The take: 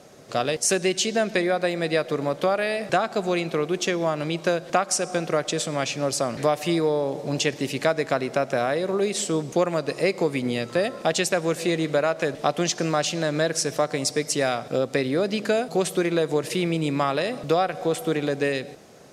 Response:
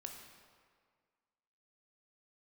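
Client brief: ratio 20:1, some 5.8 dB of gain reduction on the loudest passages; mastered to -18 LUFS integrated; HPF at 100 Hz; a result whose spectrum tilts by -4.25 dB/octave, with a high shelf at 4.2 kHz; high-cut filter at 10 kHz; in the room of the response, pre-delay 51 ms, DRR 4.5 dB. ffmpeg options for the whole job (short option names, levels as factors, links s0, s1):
-filter_complex "[0:a]highpass=100,lowpass=10000,highshelf=f=4200:g=-3.5,acompressor=threshold=0.0794:ratio=20,asplit=2[s0][s1];[1:a]atrim=start_sample=2205,adelay=51[s2];[s1][s2]afir=irnorm=-1:irlink=0,volume=0.891[s3];[s0][s3]amix=inputs=2:normalize=0,volume=2.82"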